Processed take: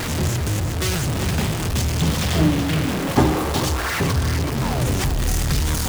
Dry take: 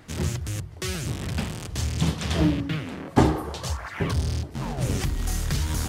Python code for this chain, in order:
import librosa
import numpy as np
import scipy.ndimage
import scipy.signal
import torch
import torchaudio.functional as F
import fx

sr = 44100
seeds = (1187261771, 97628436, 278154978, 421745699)

y = x + 0.5 * 10.0 ** (-20.0 / 20.0) * np.sign(x)
y = y + 10.0 ** (-8.5 / 20.0) * np.pad(y, (int(379 * sr / 1000.0), 0))[:len(y)]